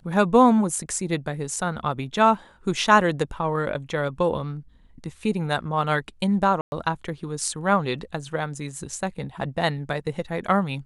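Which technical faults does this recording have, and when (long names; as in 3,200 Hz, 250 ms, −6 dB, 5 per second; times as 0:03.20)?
0:06.61–0:06.72: drop-out 111 ms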